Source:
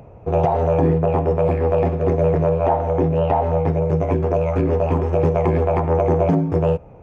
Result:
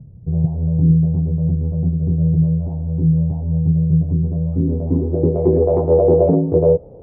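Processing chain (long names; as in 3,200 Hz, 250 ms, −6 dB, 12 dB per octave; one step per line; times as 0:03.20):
low-pass filter sweep 160 Hz → 490 Hz, 0:04.17–0:05.80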